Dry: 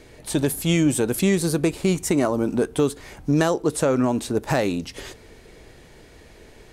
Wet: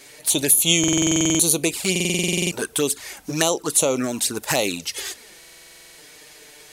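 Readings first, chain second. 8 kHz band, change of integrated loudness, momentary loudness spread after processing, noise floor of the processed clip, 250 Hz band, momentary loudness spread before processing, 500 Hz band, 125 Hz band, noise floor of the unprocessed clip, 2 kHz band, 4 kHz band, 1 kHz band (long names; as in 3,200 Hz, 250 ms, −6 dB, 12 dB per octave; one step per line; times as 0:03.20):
+12.0 dB, +2.5 dB, 12 LU, −47 dBFS, −2.5 dB, 8 LU, −2.5 dB, −4.0 dB, −48 dBFS, +4.5 dB, +10.5 dB, −1.5 dB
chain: spectral tilt +4 dB per octave
flanger swept by the level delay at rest 8 ms, full sweep at −18.5 dBFS
buffer that repeats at 0:00.79/0:01.91/0:05.38, samples 2,048, times 12
level +4.5 dB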